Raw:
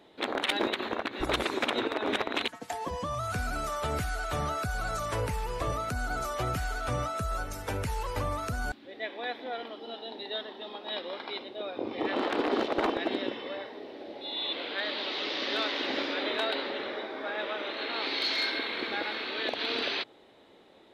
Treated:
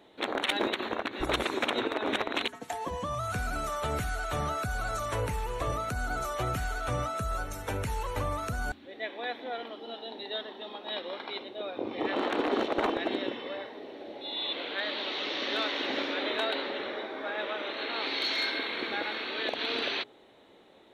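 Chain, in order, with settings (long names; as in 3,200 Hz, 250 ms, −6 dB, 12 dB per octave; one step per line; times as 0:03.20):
notch filter 4,900 Hz, Q 5.7
hum removal 82.81 Hz, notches 5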